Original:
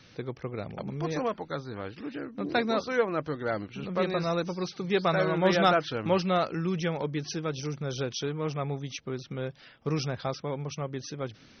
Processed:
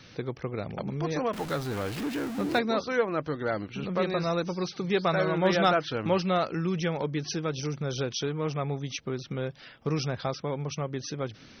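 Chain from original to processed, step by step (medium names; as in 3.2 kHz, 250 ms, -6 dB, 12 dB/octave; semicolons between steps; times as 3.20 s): 1.33–2.59 s: jump at every zero crossing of -35 dBFS; in parallel at 0 dB: compression, threshold -35 dBFS, peak gain reduction 16 dB; on the sum: trim -2 dB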